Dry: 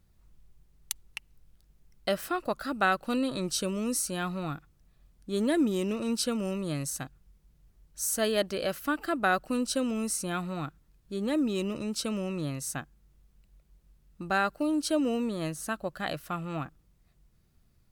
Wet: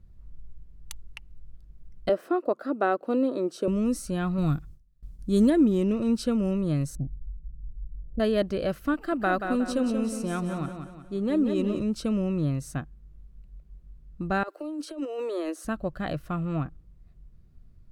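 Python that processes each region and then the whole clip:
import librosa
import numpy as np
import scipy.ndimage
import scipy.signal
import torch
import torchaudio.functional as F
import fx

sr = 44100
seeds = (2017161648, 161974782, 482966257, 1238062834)

y = fx.chain(x, sr, fx.highpass(hz=330.0, slope=24),
    fx.tilt_shelf(db=8.0, hz=940.0), at=(2.09, 3.68))
y = fx.chain(y, sr, fx.gate_hold(open_db=-52.0, close_db=-57.0, hold_ms=71.0, range_db=-21, attack_ms=1.4, release_ms=100.0),
    fx.bass_treble(bass_db=5, treble_db=13), at=(4.38, 5.5))
y = fx.chain(y, sr, fx.gaussian_blur(sigma=19.0),
    fx.low_shelf(hz=85.0, db=11.0), at=(6.95, 8.2))
y = fx.chain(y, sr, fx.peak_eq(hz=62.0, db=-9.5, octaves=2.6),
    fx.echo_feedback(ms=181, feedback_pct=43, wet_db=-7), at=(8.94, 11.8))
y = fx.chain(y, sr, fx.steep_highpass(hz=310.0, slope=72),
    fx.over_compress(threshold_db=-36.0, ratio=-1.0), at=(14.43, 15.65))
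y = fx.tilt_eq(y, sr, slope=-3.0)
y = fx.notch(y, sr, hz=840.0, q=12.0)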